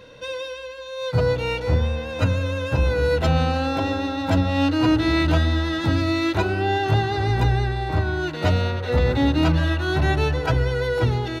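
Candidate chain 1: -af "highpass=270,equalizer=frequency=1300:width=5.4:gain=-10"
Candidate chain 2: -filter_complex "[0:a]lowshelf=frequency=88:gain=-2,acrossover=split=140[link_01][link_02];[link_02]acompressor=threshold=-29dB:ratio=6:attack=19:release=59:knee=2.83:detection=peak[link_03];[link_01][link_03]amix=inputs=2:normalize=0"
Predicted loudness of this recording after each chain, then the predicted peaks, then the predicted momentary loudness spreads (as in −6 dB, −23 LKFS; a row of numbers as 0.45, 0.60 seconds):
−25.5, −25.5 LKFS; −11.0, −11.5 dBFS; 7, 5 LU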